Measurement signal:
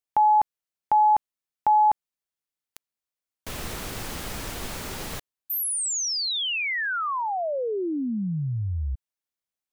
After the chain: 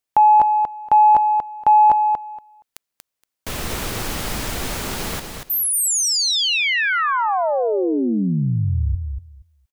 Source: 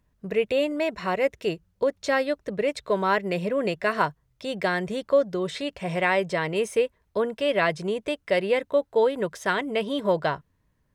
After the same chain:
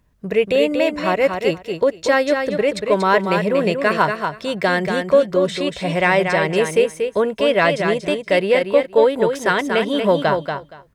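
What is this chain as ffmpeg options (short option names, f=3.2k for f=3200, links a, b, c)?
-af "acontrast=37,aecho=1:1:235|470|705:0.501|0.0802|0.0128,volume=1.5dB"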